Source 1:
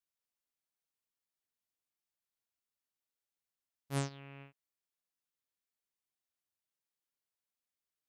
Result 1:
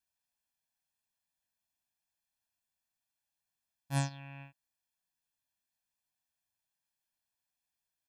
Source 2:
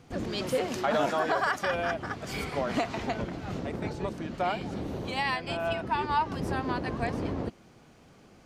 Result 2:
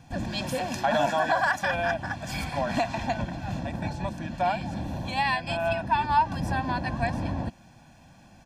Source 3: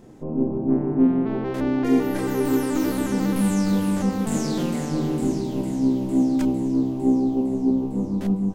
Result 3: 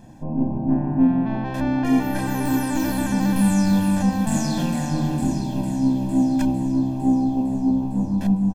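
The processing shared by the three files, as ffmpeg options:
-af "aecho=1:1:1.2:0.95"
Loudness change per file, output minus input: +3.5, +3.0, +1.0 LU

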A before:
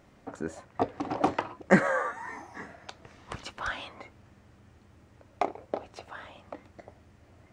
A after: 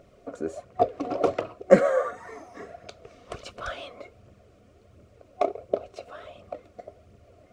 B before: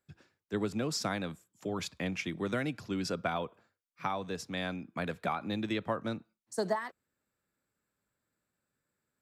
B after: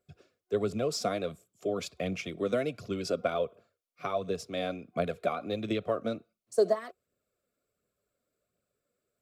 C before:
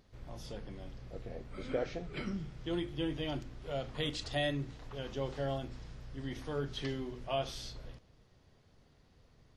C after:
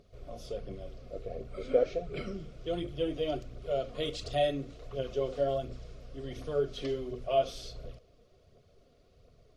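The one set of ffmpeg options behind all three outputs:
-af "aphaser=in_gain=1:out_gain=1:delay=4.3:decay=0.41:speed=1.4:type=triangular,superequalizer=7b=2.51:8b=2.51:9b=0.398:11b=0.501,volume=-1dB"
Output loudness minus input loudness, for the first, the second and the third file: +4.5, +3.0, +5.0 LU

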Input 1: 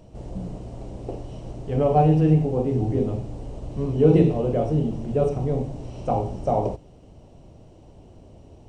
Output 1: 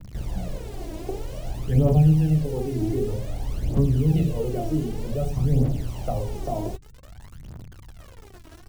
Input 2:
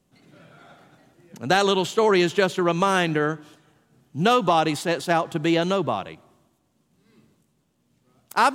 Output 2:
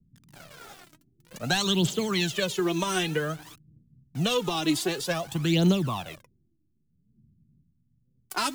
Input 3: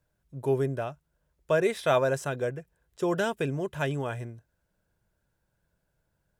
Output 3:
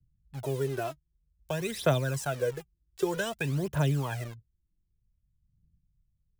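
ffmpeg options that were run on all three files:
-filter_complex "[0:a]acrossover=split=240|3000[a][b][c];[b]acompressor=threshold=-32dB:ratio=5[d];[a][d][c]amix=inputs=3:normalize=0,acrossover=split=230[e][f];[f]acrusher=bits=7:mix=0:aa=0.000001[g];[e][g]amix=inputs=2:normalize=0,aphaser=in_gain=1:out_gain=1:delay=3.2:decay=0.67:speed=0.53:type=triangular"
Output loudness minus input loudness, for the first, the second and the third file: -2.5, -5.0, -2.0 LU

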